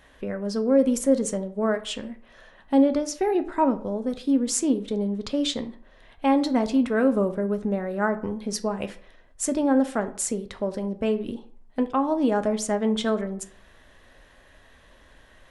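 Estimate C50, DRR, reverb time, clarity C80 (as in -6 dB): 15.0 dB, 8.0 dB, 0.55 s, 19.0 dB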